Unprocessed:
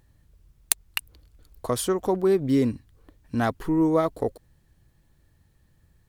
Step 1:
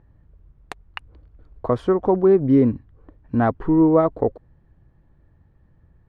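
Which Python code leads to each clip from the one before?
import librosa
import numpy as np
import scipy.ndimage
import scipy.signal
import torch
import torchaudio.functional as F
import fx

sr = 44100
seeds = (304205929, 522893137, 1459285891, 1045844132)

y = scipy.signal.sosfilt(scipy.signal.butter(2, 1300.0, 'lowpass', fs=sr, output='sos'), x)
y = F.gain(torch.from_numpy(y), 6.0).numpy()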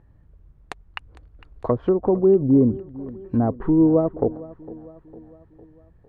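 y = fx.env_lowpass_down(x, sr, base_hz=570.0, full_db=-15.5)
y = fx.echo_feedback(y, sr, ms=455, feedback_pct=52, wet_db=-19.0)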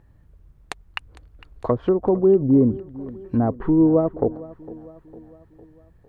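y = fx.high_shelf(x, sr, hz=2500.0, db=8.5)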